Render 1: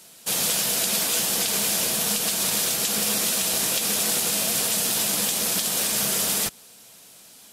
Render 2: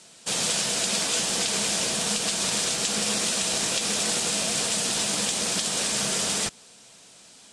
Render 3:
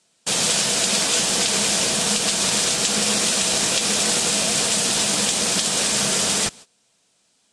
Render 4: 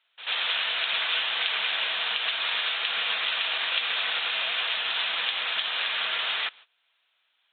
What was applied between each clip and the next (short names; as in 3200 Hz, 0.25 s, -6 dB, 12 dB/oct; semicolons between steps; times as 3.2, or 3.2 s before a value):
steep low-pass 9100 Hz 36 dB/oct
gate -44 dBFS, range -19 dB; gain +5.5 dB
Butterworth band-pass 2900 Hz, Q 0.53; downsampling 8000 Hz; pre-echo 88 ms -13.5 dB